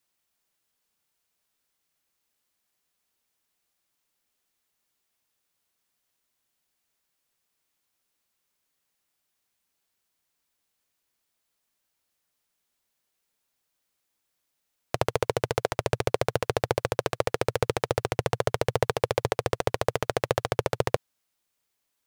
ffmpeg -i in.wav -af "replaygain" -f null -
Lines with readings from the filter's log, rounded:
track_gain = +11.3 dB
track_peak = 0.397